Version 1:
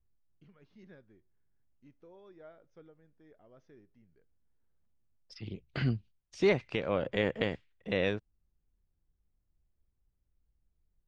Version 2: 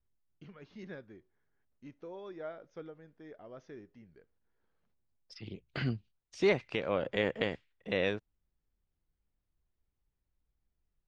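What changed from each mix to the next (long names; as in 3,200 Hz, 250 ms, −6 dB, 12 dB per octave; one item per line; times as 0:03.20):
first voice +11.0 dB
master: add low-shelf EQ 190 Hz −6 dB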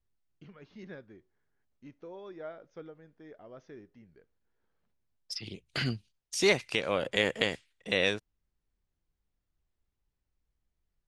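second voice: remove head-to-tape spacing loss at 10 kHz 29 dB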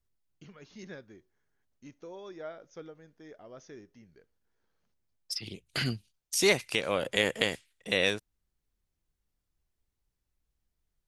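first voice: remove high-frequency loss of the air 170 metres
master: remove high-frequency loss of the air 60 metres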